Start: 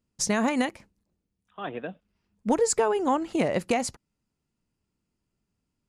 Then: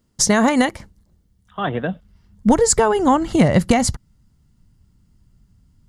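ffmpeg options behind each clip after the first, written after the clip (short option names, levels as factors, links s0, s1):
-filter_complex "[0:a]bandreject=f=2500:w=5.4,asubboost=boost=7.5:cutoff=150,asplit=2[s0][s1];[s1]acompressor=threshold=0.0224:ratio=6,volume=0.891[s2];[s0][s2]amix=inputs=2:normalize=0,volume=2.51"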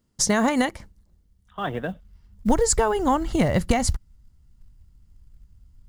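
-af "asubboost=boost=5:cutoff=72,acrusher=bits=9:mode=log:mix=0:aa=0.000001,volume=0.562"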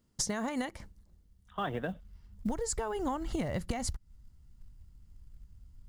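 -af "acompressor=threshold=0.0398:ratio=12,volume=0.794"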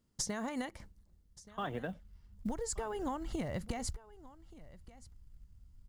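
-af "aecho=1:1:1177:0.106,volume=0.631"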